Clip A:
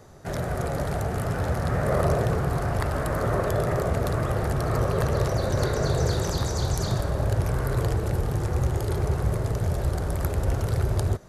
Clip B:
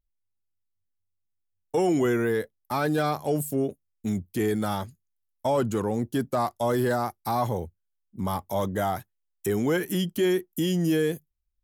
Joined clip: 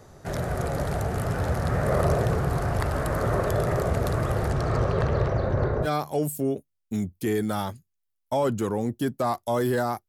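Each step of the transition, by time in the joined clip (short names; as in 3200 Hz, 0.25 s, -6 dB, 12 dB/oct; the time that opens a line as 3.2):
clip A
4.48–5.88 LPF 9000 Hz -> 1100 Hz
5.85 switch to clip B from 2.98 s, crossfade 0.06 s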